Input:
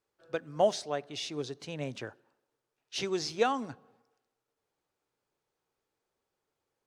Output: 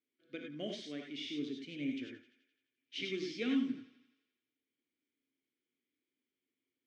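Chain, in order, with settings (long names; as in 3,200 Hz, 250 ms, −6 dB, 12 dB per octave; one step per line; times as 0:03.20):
formant filter i
on a send: feedback echo with a high-pass in the loop 86 ms, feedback 64%, high-pass 440 Hz, level −16 dB
on the sum: reverb whose tail is shaped and stops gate 120 ms rising, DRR 1.5 dB
level +6.5 dB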